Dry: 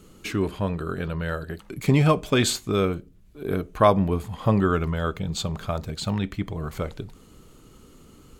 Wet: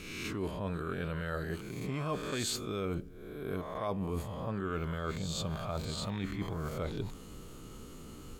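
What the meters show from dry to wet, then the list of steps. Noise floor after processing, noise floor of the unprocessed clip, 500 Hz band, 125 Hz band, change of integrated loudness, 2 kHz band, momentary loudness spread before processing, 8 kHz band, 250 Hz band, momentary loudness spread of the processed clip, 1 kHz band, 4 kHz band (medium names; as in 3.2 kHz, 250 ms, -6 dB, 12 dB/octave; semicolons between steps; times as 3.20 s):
-48 dBFS, -51 dBFS, -12.0 dB, -12.0 dB, -12.0 dB, -9.5 dB, 13 LU, -8.0 dB, -12.0 dB, 14 LU, -13.0 dB, -9.0 dB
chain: reverse spectral sustain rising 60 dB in 0.67 s; reverse; compression 8:1, threshold -33 dBFS, peak gain reduction 22 dB; reverse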